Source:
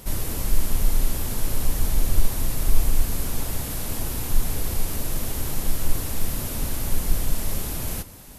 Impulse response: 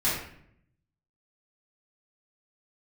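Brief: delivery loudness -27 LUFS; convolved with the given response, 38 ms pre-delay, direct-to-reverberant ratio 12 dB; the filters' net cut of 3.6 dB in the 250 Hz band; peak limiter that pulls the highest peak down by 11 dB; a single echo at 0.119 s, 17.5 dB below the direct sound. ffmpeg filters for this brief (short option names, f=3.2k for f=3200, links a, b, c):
-filter_complex "[0:a]equalizer=f=250:t=o:g=-5,alimiter=limit=-15.5dB:level=0:latency=1,aecho=1:1:119:0.133,asplit=2[a][b];[1:a]atrim=start_sample=2205,adelay=38[c];[b][c]afir=irnorm=-1:irlink=0,volume=-23.5dB[d];[a][d]amix=inputs=2:normalize=0,volume=2.5dB"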